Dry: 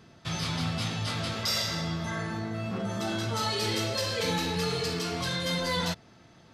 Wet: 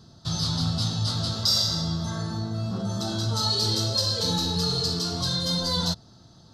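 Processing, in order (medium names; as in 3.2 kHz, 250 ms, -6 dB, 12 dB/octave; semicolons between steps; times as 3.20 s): FFT filter 110 Hz 0 dB, 460 Hz -9 dB, 810 Hz -7 dB, 1.4 kHz -9 dB, 2.3 kHz -25 dB, 4.1 kHz +3 dB, 9.5 kHz -6 dB; trim +7 dB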